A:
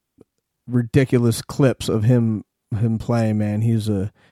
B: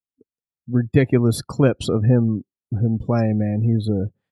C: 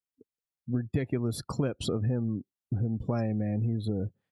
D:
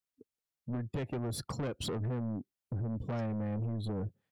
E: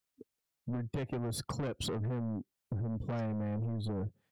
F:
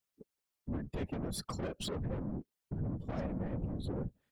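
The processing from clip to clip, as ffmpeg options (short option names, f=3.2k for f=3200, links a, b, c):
-af "afftdn=nr=27:nf=-34"
-af "acompressor=threshold=-23dB:ratio=6,volume=-3dB"
-af "asoftclip=type=tanh:threshold=-31.5dB"
-af "acompressor=threshold=-43dB:ratio=2,volume=5dB"
-af "afftfilt=real='hypot(re,im)*cos(2*PI*random(0))':imag='hypot(re,im)*sin(2*PI*random(1))':win_size=512:overlap=0.75,volume=4dB"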